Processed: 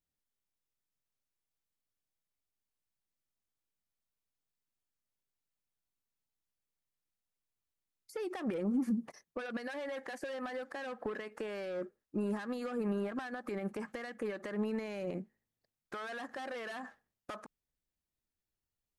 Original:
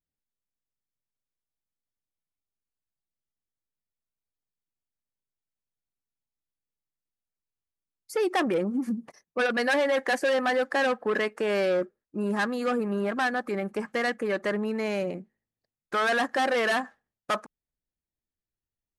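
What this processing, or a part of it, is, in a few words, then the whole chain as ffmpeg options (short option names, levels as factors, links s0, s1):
de-esser from a sidechain: -filter_complex "[0:a]asplit=2[s0][s1];[s1]highpass=f=6300:p=1,apad=whole_len=837276[s2];[s0][s2]sidechaincompress=threshold=0.002:ratio=5:attack=1.5:release=60"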